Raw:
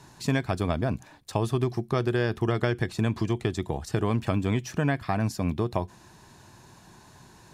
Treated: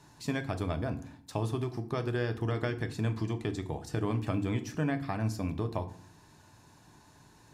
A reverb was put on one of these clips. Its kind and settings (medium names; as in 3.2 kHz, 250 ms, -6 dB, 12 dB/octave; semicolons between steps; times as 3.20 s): FDN reverb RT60 0.55 s, low-frequency decay 1.55×, high-frequency decay 0.75×, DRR 7.5 dB; trim -7 dB